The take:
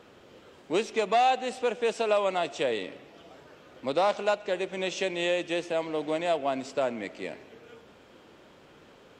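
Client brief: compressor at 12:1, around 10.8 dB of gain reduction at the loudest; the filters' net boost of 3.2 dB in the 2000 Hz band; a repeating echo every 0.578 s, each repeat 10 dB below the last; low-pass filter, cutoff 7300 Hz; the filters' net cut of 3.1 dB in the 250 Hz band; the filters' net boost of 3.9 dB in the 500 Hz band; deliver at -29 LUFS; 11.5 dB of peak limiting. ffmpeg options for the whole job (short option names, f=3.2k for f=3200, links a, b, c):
-af "lowpass=7.3k,equalizer=f=250:t=o:g=-9,equalizer=f=500:t=o:g=6.5,equalizer=f=2k:t=o:g=4,acompressor=threshold=-27dB:ratio=12,alimiter=level_in=3.5dB:limit=-24dB:level=0:latency=1,volume=-3.5dB,aecho=1:1:578|1156|1734|2312:0.316|0.101|0.0324|0.0104,volume=8dB"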